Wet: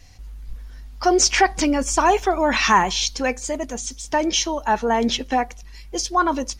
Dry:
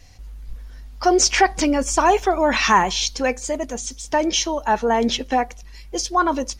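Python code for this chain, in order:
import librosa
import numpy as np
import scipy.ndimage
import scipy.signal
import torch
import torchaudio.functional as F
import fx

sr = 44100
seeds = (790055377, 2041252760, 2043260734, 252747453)

y = fx.peak_eq(x, sr, hz=530.0, db=-2.5, octaves=0.77)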